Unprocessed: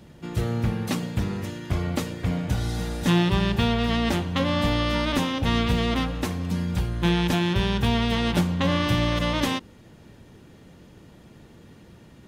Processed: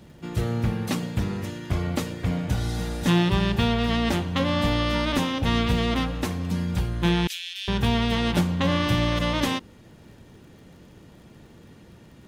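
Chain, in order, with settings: 7.27–7.68 inverse Chebyshev high-pass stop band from 580 Hz, stop band 70 dB; crackle 67/s -49 dBFS

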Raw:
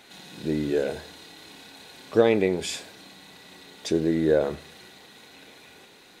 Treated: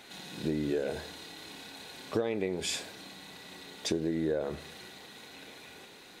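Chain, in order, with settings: compressor 8:1, threshold -27 dBFS, peak gain reduction 14.5 dB

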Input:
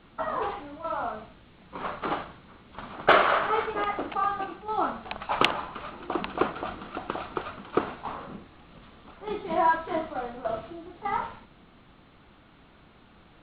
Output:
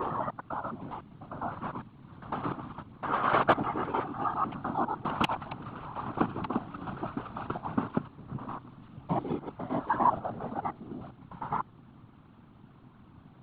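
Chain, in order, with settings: slices in reverse order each 0.101 s, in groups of 5; whisperiser; graphic EQ 125/250/500/1000/2000/4000 Hz +11/+7/-5/+5/-6/-6 dB; gain -4.5 dB

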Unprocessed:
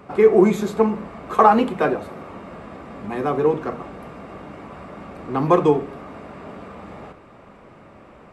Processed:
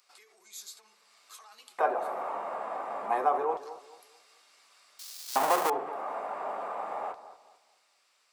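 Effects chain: 4.99–5.7 half-waves squared off; bell 3200 Hz -9.5 dB 2.5 oct; notches 50/100/150/200/250/300/350 Hz; in parallel at +2 dB: compressor, threshold -31 dBFS, peak gain reduction 20.5 dB; on the sum: limiter -14.5 dBFS, peak gain reduction 11.5 dB; LFO high-pass square 0.28 Hz 790–4600 Hz; on a send: dark delay 0.218 s, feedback 31%, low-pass 1800 Hz, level -14 dB; on the sum: gain -3.5 dB

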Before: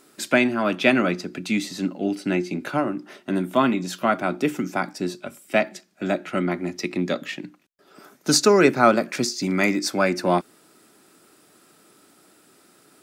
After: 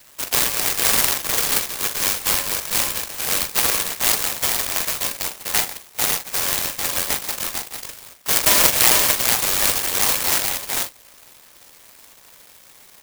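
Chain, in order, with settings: HPF 160 Hz 12 dB/oct; notch 620 Hz, Q 12; in parallel at +2.5 dB: compressor, threshold -34 dBFS, peak gain reduction 21 dB; on the sum: sample-rate reducer 1200 Hz, jitter 0%; doubler 43 ms -9 dB; on a send: echo 0.448 s -3.5 dB; on the sum: inverted band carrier 2600 Hz; clock jitter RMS 0.15 ms; gain -1 dB

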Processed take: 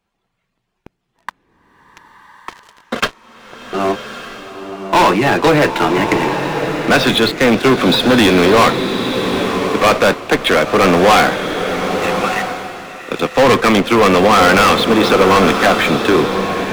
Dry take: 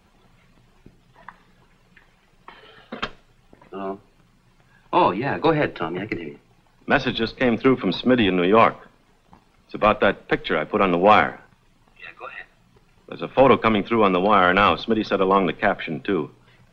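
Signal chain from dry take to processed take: low shelf 200 Hz -7 dB; sample leveller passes 5; bloom reverb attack 1.2 s, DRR 6 dB; gain -3 dB

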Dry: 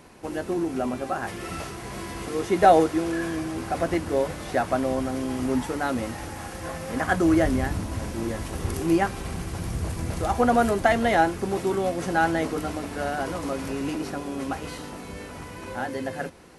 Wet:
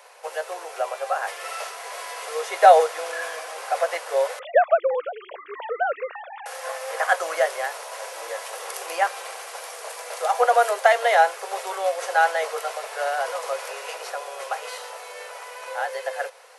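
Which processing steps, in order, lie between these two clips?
4.39–6.46 sine-wave speech; steep high-pass 470 Hz 72 dB/oct; gain +4 dB

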